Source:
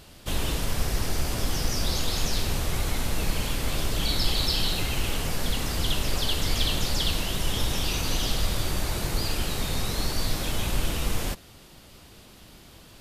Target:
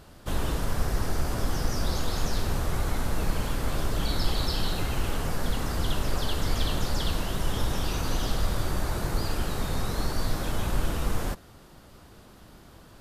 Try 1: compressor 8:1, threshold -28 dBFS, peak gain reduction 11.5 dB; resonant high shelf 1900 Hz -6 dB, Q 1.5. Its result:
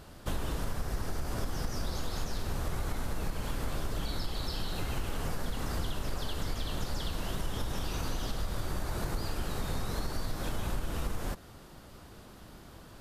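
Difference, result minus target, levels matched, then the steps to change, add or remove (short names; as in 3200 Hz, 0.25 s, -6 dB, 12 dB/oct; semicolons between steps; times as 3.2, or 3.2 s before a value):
compressor: peak gain reduction +11.5 dB
remove: compressor 8:1, threshold -28 dBFS, peak gain reduction 11.5 dB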